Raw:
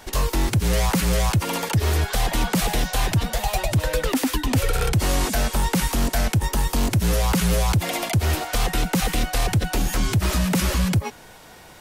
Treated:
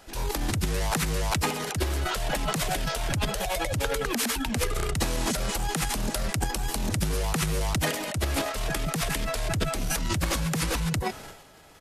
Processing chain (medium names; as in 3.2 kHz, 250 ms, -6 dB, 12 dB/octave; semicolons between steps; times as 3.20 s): transient shaper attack -4 dB, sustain +11 dB; pitch shift -2 st; trim -7.5 dB